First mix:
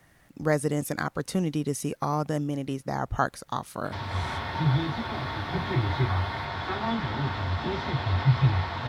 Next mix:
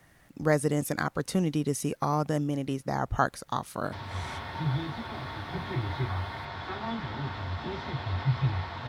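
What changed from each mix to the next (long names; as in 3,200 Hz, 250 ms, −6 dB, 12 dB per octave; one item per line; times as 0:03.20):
background −5.5 dB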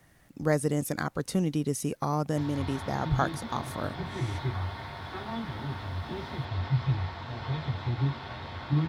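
background: entry −1.55 s
master: add parametric band 1,500 Hz −3 dB 2.9 octaves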